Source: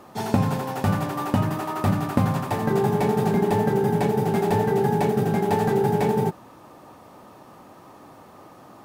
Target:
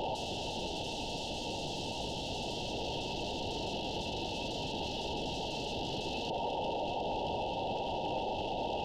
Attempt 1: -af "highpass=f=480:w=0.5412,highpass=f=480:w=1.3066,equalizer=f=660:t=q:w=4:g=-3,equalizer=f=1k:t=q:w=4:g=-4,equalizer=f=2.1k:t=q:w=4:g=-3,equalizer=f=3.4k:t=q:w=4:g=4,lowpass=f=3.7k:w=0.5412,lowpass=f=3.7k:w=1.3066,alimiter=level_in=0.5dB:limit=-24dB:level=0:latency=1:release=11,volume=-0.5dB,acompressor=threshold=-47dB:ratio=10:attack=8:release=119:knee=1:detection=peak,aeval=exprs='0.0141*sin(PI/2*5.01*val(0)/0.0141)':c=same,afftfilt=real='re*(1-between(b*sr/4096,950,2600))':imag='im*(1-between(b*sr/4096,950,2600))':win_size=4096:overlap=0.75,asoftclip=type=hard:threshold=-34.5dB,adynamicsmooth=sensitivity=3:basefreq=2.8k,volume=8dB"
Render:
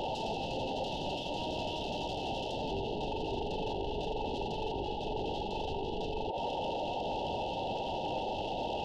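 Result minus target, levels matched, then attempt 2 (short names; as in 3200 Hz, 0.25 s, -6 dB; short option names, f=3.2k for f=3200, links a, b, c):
compressor: peak gain reduction +5.5 dB
-af "highpass=f=480:w=0.5412,highpass=f=480:w=1.3066,equalizer=f=660:t=q:w=4:g=-3,equalizer=f=1k:t=q:w=4:g=-4,equalizer=f=2.1k:t=q:w=4:g=-3,equalizer=f=3.4k:t=q:w=4:g=4,lowpass=f=3.7k:w=0.5412,lowpass=f=3.7k:w=1.3066,alimiter=level_in=0.5dB:limit=-24dB:level=0:latency=1:release=11,volume=-0.5dB,acompressor=threshold=-41dB:ratio=10:attack=8:release=119:knee=1:detection=peak,aeval=exprs='0.0141*sin(PI/2*5.01*val(0)/0.0141)':c=same,afftfilt=real='re*(1-between(b*sr/4096,950,2600))':imag='im*(1-between(b*sr/4096,950,2600))':win_size=4096:overlap=0.75,asoftclip=type=hard:threshold=-34.5dB,adynamicsmooth=sensitivity=3:basefreq=2.8k,volume=8dB"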